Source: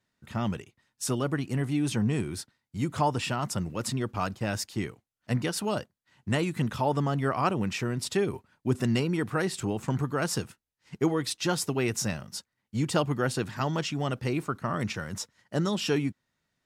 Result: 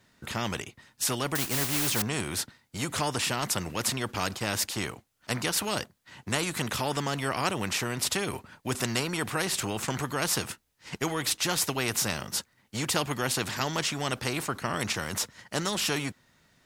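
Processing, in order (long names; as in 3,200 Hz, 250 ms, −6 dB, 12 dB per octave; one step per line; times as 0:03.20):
0:01.35–0:02.02: noise that follows the level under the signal 13 dB
every bin compressed towards the loudest bin 2 to 1
level +4 dB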